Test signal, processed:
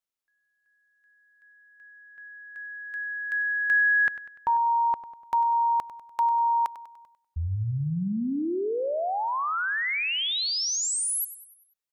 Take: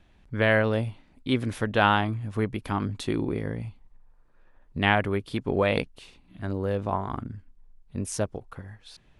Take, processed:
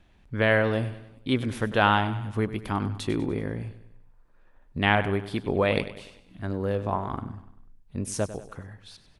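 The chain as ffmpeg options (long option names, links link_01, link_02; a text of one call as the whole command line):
ffmpeg -i in.wav -af "aecho=1:1:98|196|294|392|490:0.2|0.0978|0.0479|0.0235|0.0115" out.wav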